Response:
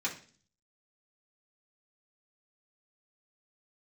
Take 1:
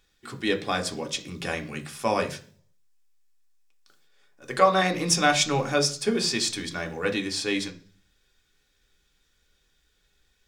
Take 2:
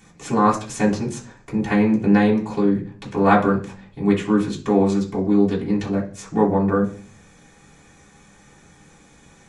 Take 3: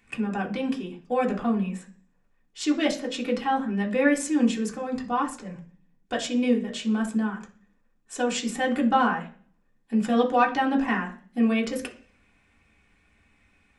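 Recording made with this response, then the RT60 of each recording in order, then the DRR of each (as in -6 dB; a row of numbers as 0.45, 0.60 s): 2; 0.40, 0.40, 0.45 s; 3.5, -6.5, -1.0 dB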